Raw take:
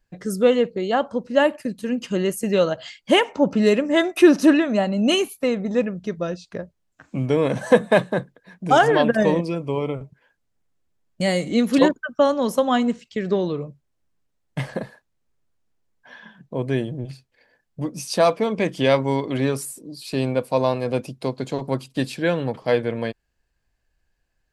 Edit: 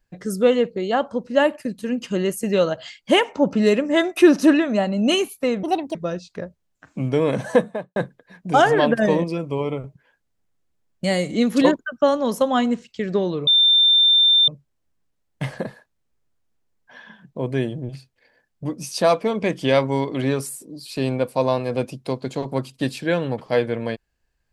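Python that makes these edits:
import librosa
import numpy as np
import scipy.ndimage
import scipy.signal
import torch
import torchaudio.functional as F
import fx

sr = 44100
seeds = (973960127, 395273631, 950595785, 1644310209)

y = fx.studio_fade_out(x, sr, start_s=7.59, length_s=0.54)
y = fx.edit(y, sr, fx.speed_span(start_s=5.63, length_s=0.49, speed=1.53),
    fx.insert_tone(at_s=13.64, length_s=1.01, hz=3580.0, db=-11.5), tone=tone)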